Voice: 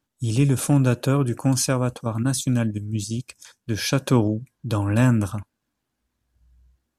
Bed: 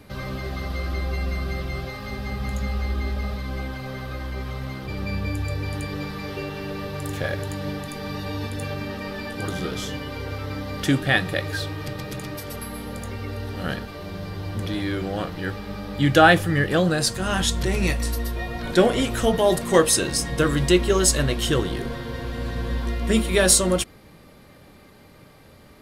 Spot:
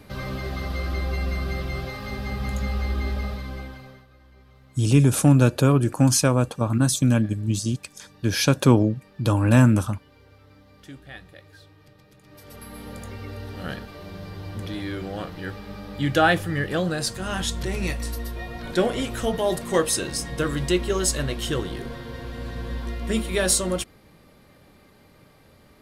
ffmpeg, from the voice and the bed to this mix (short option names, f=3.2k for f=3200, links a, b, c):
-filter_complex "[0:a]adelay=4550,volume=2.5dB[a];[1:a]volume=17.5dB,afade=t=out:st=3.15:d=0.91:silence=0.0794328,afade=t=in:st=12.23:d=0.65:silence=0.133352[b];[a][b]amix=inputs=2:normalize=0"